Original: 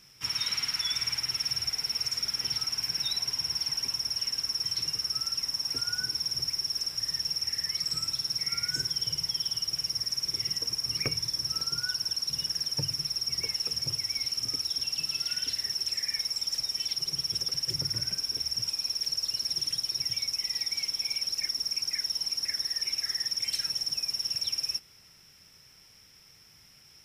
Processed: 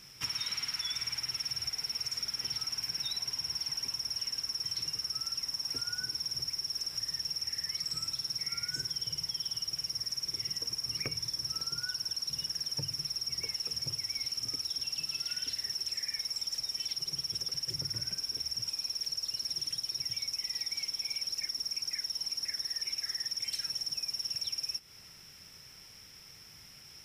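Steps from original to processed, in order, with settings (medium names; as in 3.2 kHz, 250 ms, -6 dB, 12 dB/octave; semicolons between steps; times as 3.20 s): compression 4:1, threshold -37 dBFS, peak gain reduction 10.5 dB; trim +3.5 dB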